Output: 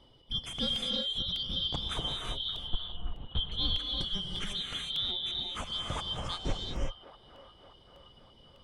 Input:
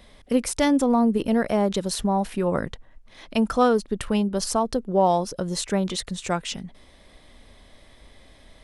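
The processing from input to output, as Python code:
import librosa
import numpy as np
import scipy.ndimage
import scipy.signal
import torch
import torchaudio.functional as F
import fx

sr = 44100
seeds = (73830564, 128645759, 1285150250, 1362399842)

p1 = fx.band_shuffle(x, sr, order='3412')
p2 = fx.lpc_vocoder(p1, sr, seeds[0], excitation='whisper', order=8, at=(2.31, 3.52))
p3 = p2 + fx.echo_wet_bandpass(p2, sr, ms=576, feedback_pct=57, hz=870.0, wet_db=-12.5, dry=0)
p4 = fx.dereverb_blind(p3, sr, rt60_s=0.62)
p5 = fx.tilt_eq(p4, sr, slope=-4.5)
p6 = fx.rev_gated(p5, sr, seeds[1], gate_ms=390, shape='rising', drr_db=-0.5)
p7 = fx.buffer_crackle(p6, sr, first_s=0.76, period_s=0.6, block=64, kind='repeat')
y = F.gain(torch.from_numpy(p7), -7.0).numpy()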